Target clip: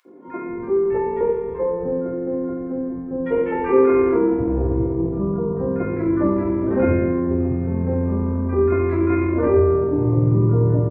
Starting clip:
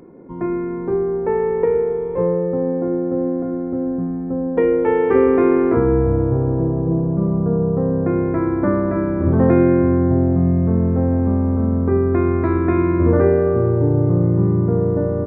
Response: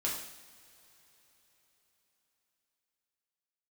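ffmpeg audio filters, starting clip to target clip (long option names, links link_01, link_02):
-filter_complex "[0:a]acrossover=split=190|1300[link_01][link_02][link_03];[link_02]adelay=60[link_04];[link_01]adelay=380[link_05];[link_05][link_04][link_03]amix=inputs=3:normalize=0[link_06];[1:a]atrim=start_sample=2205[link_07];[link_06][link_07]afir=irnorm=-1:irlink=0,atempo=1.4,volume=-4dB"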